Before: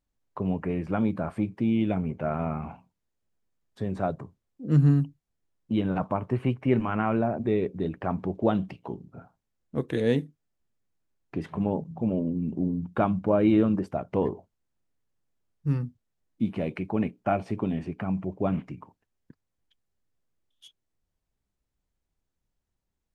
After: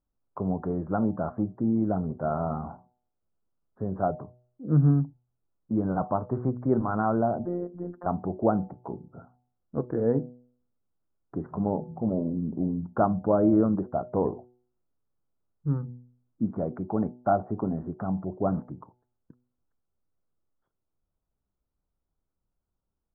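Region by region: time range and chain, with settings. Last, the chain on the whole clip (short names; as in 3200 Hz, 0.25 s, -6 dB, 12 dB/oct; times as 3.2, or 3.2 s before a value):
7.45–8.06 bell 110 Hz -6 dB 2.8 oct + de-hum 376.4 Hz, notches 4 + robotiser 176 Hz
whole clip: elliptic low-pass 1400 Hz, stop band 50 dB; de-hum 123.1 Hz, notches 7; dynamic EQ 730 Hz, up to +4 dB, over -45 dBFS, Q 3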